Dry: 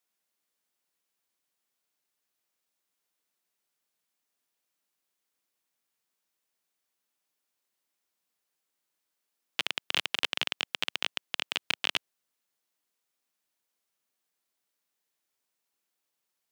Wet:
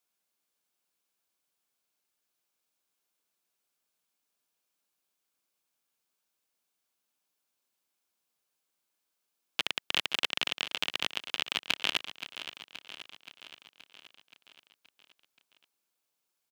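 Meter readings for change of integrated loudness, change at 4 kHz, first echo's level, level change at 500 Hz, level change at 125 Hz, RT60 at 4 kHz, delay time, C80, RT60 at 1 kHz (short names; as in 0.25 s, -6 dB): -0.5 dB, +0.5 dB, -12.0 dB, +0.5 dB, +0.5 dB, none, 0.525 s, none, none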